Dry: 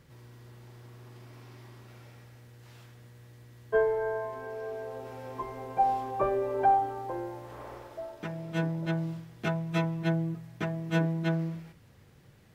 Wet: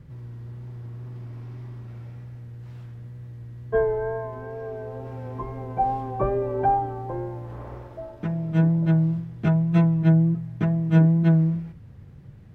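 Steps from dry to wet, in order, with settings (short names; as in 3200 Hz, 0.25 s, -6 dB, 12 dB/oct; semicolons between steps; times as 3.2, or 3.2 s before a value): tone controls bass +12 dB, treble 0 dB; wow and flutter 27 cents; high shelf 2900 Hz -12 dB; gain +2.5 dB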